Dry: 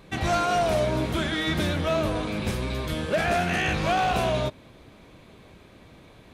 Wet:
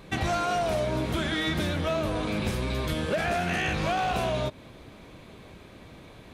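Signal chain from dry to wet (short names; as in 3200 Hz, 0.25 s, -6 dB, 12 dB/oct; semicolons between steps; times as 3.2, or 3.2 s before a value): compressor, threshold -27 dBFS, peak gain reduction 7 dB; gain +2.5 dB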